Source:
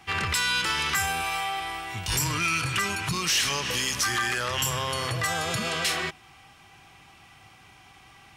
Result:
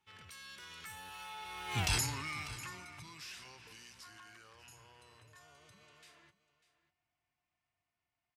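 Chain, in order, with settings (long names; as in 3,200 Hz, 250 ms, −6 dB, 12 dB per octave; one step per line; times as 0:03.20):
source passing by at 0:01.82, 34 m/s, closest 2 metres
on a send: single-tap delay 596 ms −16 dB
on the sum: level +2 dB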